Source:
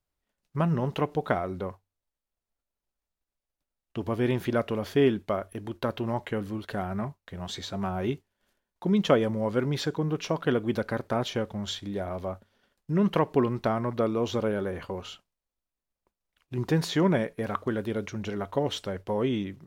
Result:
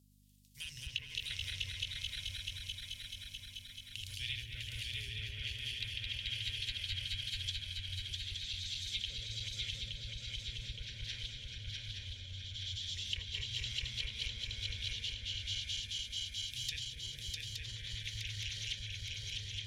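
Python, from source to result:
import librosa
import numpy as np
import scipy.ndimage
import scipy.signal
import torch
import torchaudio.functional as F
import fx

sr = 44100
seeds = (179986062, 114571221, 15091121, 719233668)

y = fx.reverse_delay_fb(x, sr, ms=108, feedback_pct=85, wet_db=-2)
y = scipy.signal.sosfilt(scipy.signal.cheby2(4, 50, [160.0, 1300.0], 'bandstop', fs=sr, output='sos'), y)
y = fx.high_shelf(y, sr, hz=5200.0, db=11.5)
y = fx.env_lowpass_down(y, sr, base_hz=810.0, full_db=-33.5)
y = fx.add_hum(y, sr, base_hz=50, snr_db=20)
y = fx.highpass(y, sr, hz=94.0, slope=6)
y = fx.echo_swing(y, sr, ms=869, ratio=3, feedback_pct=55, wet_db=-3.0)
y = y * librosa.db_to_amplitude(6.0)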